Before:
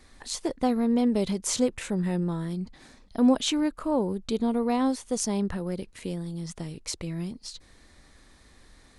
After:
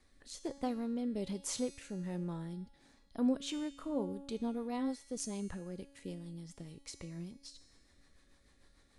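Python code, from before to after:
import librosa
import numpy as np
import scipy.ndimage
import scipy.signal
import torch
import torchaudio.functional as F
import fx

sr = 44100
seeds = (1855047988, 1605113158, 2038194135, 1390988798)

y = fx.rotary_switch(x, sr, hz=1.2, then_hz=6.7, switch_at_s=3.17)
y = fx.comb_fb(y, sr, f0_hz=280.0, decay_s=1.2, harmonics='all', damping=0.0, mix_pct=80)
y = F.gain(torch.from_numpy(y), 3.0).numpy()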